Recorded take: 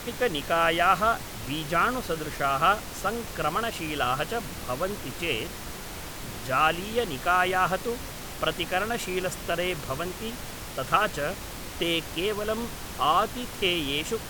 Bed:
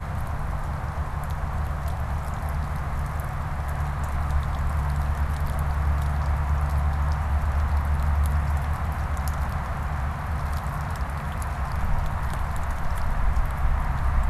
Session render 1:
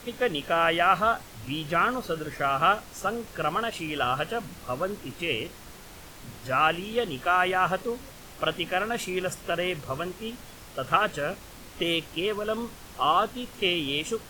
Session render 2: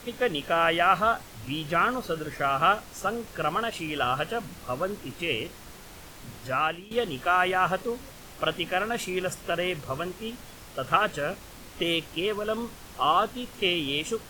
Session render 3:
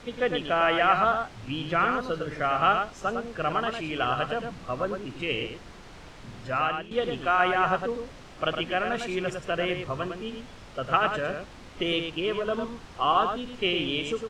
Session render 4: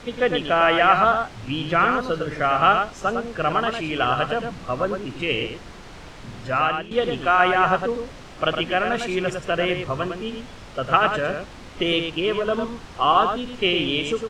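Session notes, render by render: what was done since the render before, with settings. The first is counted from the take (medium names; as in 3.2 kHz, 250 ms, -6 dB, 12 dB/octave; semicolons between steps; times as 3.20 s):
noise print and reduce 8 dB
6.42–6.91 s: fade out, to -13.5 dB
distance through air 100 m; echo from a far wall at 18 m, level -6 dB
trim +5.5 dB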